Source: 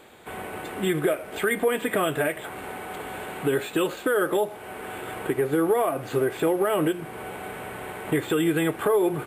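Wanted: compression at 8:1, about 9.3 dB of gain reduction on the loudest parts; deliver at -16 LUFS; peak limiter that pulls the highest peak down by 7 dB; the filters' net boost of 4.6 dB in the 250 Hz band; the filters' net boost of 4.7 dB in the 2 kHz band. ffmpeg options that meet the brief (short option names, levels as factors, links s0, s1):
-af "equalizer=f=250:t=o:g=7,equalizer=f=2000:t=o:g=6,acompressor=threshold=0.0562:ratio=8,volume=5.96,alimiter=limit=0.501:level=0:latency=1"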